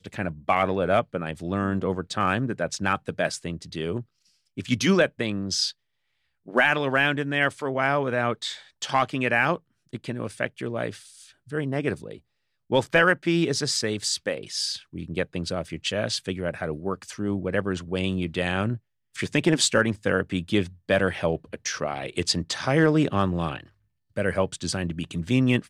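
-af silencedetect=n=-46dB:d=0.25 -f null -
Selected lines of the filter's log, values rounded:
silence_start: 4.03
silence_end: 4.57 | silence_duration: 0.54
silence_start: 5.72
silence_end: 6.46 | silence_duration: 0.74
silence_start: 9.58
silence_end: 9.93 | silence_duration: 0.35
silence_start: 12.18
silence_end: 12.70 | silence_duration: 0.52
silence_start: 18.78
silence_end: 19.15 | silence_duration: 0.37
silence_start: 23.68
silence_end: 24.16 | silence_duration: 0.48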